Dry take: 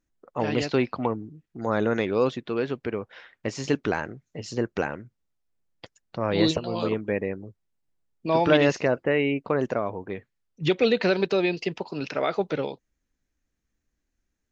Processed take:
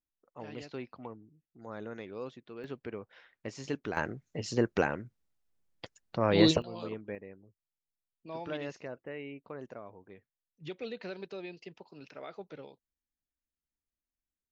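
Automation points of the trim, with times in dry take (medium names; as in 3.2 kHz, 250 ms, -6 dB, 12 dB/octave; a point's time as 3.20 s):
-18 dB
from 2.64 s -11 dB
from 3.97 s -1 dB
from 6.62 s -13 dB
from 7.15 s -19 dB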